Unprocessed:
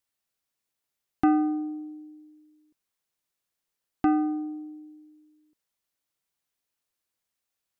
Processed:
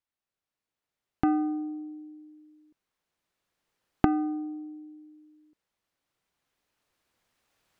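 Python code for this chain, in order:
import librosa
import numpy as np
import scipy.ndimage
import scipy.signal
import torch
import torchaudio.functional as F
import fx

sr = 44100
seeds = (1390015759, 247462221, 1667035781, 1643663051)

y = fx.recorder_agc(x, sr, target_db=-17.0, rise_db_per_s=6.0, max_gain_db=30)
y = fx.lowpass(y, sr, hz=2300.0, slope=6)
y = F.gain(torch.from_numpy(y), -3.5).numpy()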